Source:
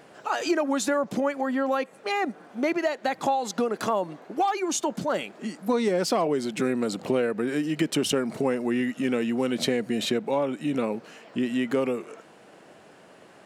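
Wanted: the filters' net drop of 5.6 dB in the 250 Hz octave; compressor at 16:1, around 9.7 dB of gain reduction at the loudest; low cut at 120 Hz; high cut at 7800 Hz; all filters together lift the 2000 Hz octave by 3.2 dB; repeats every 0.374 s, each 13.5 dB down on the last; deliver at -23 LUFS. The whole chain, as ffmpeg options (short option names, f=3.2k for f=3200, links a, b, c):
-af "highpass=120,lowpass=7.8k,equalizer=f=250:t=o:g=-6.5,equalizer=f=2k:t=o:g=4,acompressor=threshold=-30dB:ratio=16,aecho=1:1:374|748:0.211|0.0444,volume=12dB"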